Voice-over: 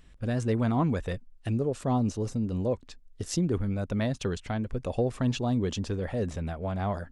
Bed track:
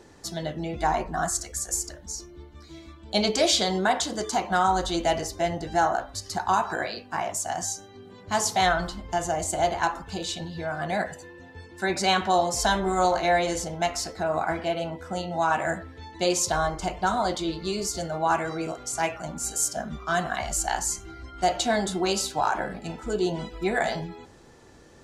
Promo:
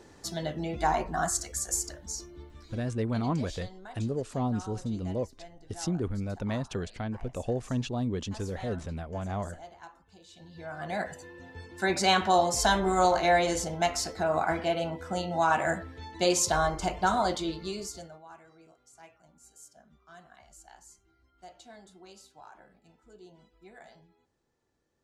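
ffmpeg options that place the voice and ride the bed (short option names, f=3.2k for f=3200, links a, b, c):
-filter_complex "[0:a]adelay=2500,volume=-3.5dB[a];[1:a]volume=20.5dB,afade=t=out:st=2.47:d=0.61:silence=0.0841395,afade=t=in:st=10.3:d=1.19:silence=0.0749894,afade=t=out:st=17.18:d=1.05:silence=0.0530884[b];[a][b]amix=inputs=2:normalize=0"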